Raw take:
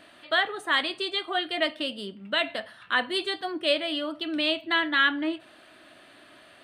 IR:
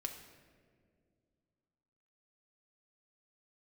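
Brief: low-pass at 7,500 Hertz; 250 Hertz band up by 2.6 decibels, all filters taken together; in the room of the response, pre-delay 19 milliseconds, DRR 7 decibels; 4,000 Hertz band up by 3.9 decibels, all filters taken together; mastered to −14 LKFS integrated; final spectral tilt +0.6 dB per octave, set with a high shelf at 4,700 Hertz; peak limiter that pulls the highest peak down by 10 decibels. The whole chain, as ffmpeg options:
-filter_complex "[0:a]lowpass=7500,equalizer=frequency=250:width_type=o:gain=3.5,equalizer=frequency=4000:width_type=o:gain=3,highshelf=frequency=4700:gain=5.5,alimiter=limit=-18dB:level=0:latency=1,asplit=2[link_01][link_02];[1:a]atrim=start_sample=2205,adelay=19[link_03];[link_02][link_03]afir=irnorm=-1:irlink=0,volume=-6dB[link_04];[link_01][link_04]amix=inputs=2:normalize=0,volume=13.5dB"

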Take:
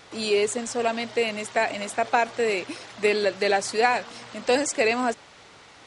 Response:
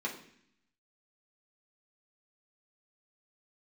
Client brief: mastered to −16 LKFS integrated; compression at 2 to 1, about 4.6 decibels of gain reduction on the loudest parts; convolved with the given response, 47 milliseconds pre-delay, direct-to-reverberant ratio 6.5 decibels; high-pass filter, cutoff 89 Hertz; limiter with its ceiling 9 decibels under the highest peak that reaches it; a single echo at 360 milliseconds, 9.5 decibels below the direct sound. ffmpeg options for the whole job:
-filter_complex "[0:a]highpass=89,acompressor=threshold=-25dB:ratio=2,alimiter=limit=-19.5dB:level=0:latency=1,aecho=1:1:360:0.335,asplit=2[link_01][link_02];[1:a]atrim=start_sample=2205,adelay=47[link_03];[link_02][link_03]afir=irnorm=-1:irlink=0,volume=-10dB[link_04];[link_01][link_04]amix=inputs=2:normalize=0,volume=13.5dB"

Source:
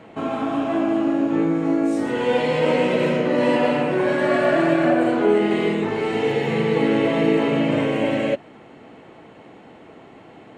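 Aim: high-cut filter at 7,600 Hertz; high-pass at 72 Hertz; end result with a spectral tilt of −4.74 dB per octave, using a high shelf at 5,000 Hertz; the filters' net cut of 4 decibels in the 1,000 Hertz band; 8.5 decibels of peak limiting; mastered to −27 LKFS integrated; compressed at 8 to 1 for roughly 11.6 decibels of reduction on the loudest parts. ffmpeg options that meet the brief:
ffmpeg -i in.wav -af "highpass=72,lowpass=7600,equalizer=frequency=1000:width_type=o:gain=-6,highshelf=frequency=5000:gain=7.5,acompressor=threshold=-27dB:ratio=8,volume=8dB,alimiter=limit=-19dB:level=0:latency=1" out.wav

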